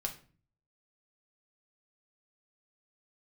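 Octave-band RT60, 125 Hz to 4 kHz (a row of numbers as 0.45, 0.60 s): 0.80, 0.65, 0.45, 0.40, 0.35, 0.30 s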